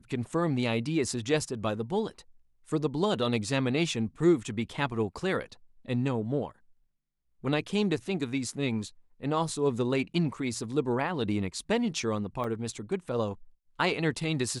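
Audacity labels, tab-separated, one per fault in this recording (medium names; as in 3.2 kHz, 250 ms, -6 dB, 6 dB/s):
12.440000	12.440000	dropout 3.1 ms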